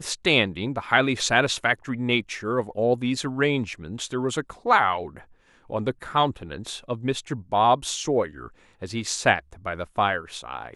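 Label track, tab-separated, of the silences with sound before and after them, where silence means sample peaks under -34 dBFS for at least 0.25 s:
5.180000	5.700000	silence
8.480000	8.820000	silence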